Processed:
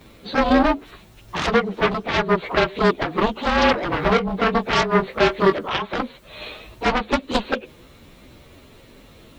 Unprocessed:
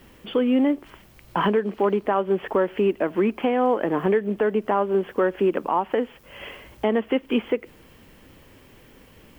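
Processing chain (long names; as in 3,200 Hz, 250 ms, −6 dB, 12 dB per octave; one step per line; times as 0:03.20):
partials spread apart or drawn together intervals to 110%
harmonic generator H 7 −8 dB, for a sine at −10.5 dBFS
0:03.91–0:05.57: double-tracking delay 21 ms −8 dB
level +2.5 dB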